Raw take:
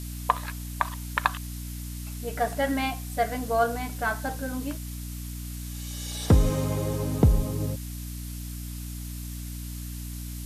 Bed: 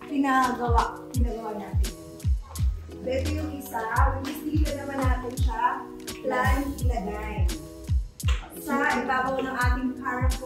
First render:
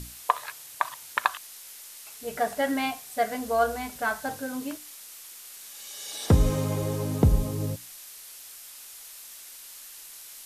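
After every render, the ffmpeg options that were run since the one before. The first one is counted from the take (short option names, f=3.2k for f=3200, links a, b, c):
-af "bandreject=f=60:t=h:w=6,bandreject=f=120:t=h:w=6,bandreject=f=180:t=h:w=6,bandreject=f=240:t=h:w=6,bandreject=f=300:t=h:w=6"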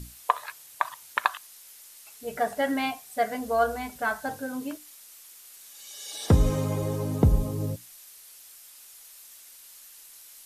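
-af "afftdn=nr=6:nf=-45"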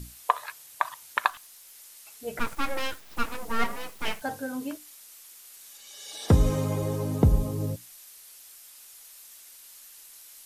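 -filter_complex "[0:a]asettb=1/sr,asplit=3[a][b][c];[a]atrim=end=1.304[d];[b]atrim=start=1.3:end=1.75,asetpts=PTS-STARTPTS,afade=t=in:d=0.004:c=qsin,afade=t=out:st=0.446:d=0.004:c=qsin,aeval=exprs='(tanh(112*val(0)+0.15)-tanh(0.15))/112':c=same[e];[c]atrim=start=1.746[f];[d][e]acrossfade=d=0.004:c1=hsin:c2=qsin[g];[g][f]acrossfade=d=0.004:c1=qsin:c2=hsin,asettb=1/sr,asplit=3[h][i][j];[h]atrim=end=2.394[k];[i]atrim=start=2.39:end=4.22,asetpts=PTS-STARTPTS,afade=t=in:d=0.004:c=qsin,afade=t=out:st=1.826:d=0.004:c=qsin,aeval=exprs='abs(val(0))':c=same[l];[j]atrim=start=4.216[m];[k][l]acrossfade=d=0.004:c1=hsin:c2=qsin[n];[n][m]acrossfade=d=0.004:c1=qsin:c2=hsin,asettb=1/sr,asplit=3[o][p][q];[o]atrim=end=5.774[r];[p]atrim=start=5.77:end=6.29,asetpts=PTS-STARTPTS,afade=t=in:d=0.004:c=qsin,afade=t=out:st=0.516:d=0.004:c=qsin,highshelf=f=5.6k:g=-5.5[s];[q]atrim=start=6.286[t];[r][s]acrossfade=d=0.004:c1=hsin:c2=qsin[u];[u][t]acrossfade=d=0.004:c1=qsin:c2=hsin"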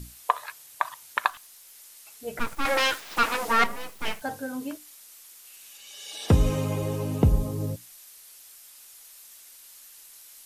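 -filter_complex "[0:a]asettb=1/sr,asplit=3[a][b][c];[a]atrim=end=2.654[d];[b]atrim=start=2.65:end=3.64,asetpts=PTS-STARTPTS,afade=t=in:d=0.004:c=qsin,afade=t=out:st=0.986:d=0.004:c=qsin,asplit=2[e][f];[f]highpass=f=720:p=1,volume=19dB,asoftclip=type=tanh:threshold=-11.5dB[g];[e][g]amix=inputs=2:normalize=0,lowpass=f=5.4k:p=1,volume=-6dB[h];[c]atrim=start=3.636[i];[d][h]acrossfade=d=0.004:c1=hsin:c2=qsin[j];[j][i]acrossfade=d=0.004:c1=qsin:c2=hsin,asettb=1/sr,asplit=3[k][l][m];[k]atrim=end=5.464[n];[l]atrim=start=5.46:end=7.3,asetpts=PTS-STARTPTS,afade=t=in:d=0.004:c=qsin,afade=t=out:st=1.836:d=0.004:c=qsin,equalizer=f=2.7k:t=o:w=0.37:g=9[o];[m]atrim=start=7.296[p];[n][o]acrossfade=d=0.004:c1=hsin:c2=qsin[q];[q][p]acrossfade=d=0.004:c1=qsin:c2=hsin"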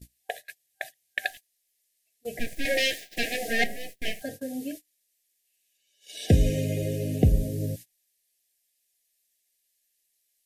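-af "afftfilt=real='re*(1-between(b*sr/4096,770,1600))':imag='im*(1-between(b*sr/4096,770,1600))':win_size=4096:overlap=0.75,agate=range=-25dB:threshold=-39dB:ratio=16:detection=peak"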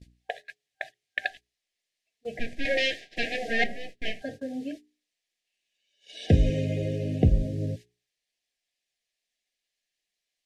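-af "lowpass=4k,bandreject=f=60:t=h:w=6,bandreject=f=120:t=h:w=6,bandreject=f=180:t=h:w=6,bandreject=f=240:t=h:w=6,bandreject=f=300:t=h:w=6,bandreject=f=360:t=h:w=6,bandreject=f=420:t=h:w=6"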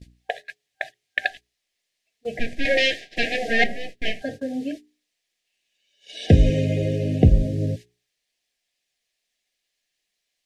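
-af "volume=6dB,alimiter=limit=-3dB:level=0:latency=1"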